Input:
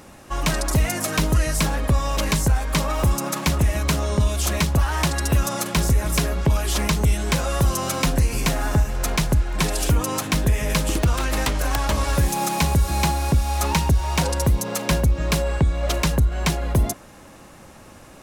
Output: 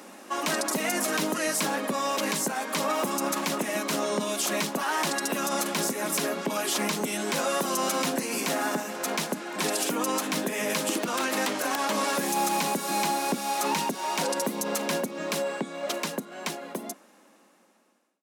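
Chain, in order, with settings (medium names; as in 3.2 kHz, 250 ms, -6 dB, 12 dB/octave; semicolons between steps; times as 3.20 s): fade out at the end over 3.73 s; steep high-pass 200 Hz 48 dB/octave; peak limiter -16.5 dBFS, peak gain reduction 8.5 dB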